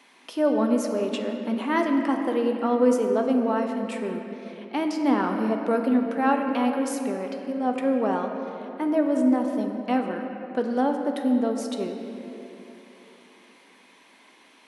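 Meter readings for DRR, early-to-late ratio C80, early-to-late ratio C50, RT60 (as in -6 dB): 3.0 dB, 5.0 dB, 4.5 dB, 3.0 s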